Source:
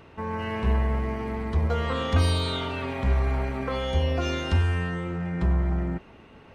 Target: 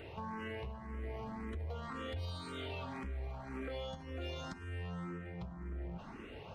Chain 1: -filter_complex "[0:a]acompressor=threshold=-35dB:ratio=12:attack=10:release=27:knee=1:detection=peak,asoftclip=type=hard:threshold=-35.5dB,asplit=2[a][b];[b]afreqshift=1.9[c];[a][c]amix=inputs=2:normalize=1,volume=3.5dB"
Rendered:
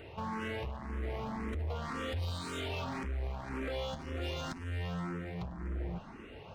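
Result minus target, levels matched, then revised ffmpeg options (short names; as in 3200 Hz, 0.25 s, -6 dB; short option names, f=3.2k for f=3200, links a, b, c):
compressor: peak gain reduction -8 dB
-filter_complex "[0:a]acompressor=threshold=-43.5dB:ratio=12:attack=10:release=27:knee=1:detection=peak,asoftclip=type=hard:threshold=-35.5dB,asplit=2[a][b];[b]afreqshift=1.9[c];[a][c]amix=inputs=2:normalize=1,volume=3.5dB"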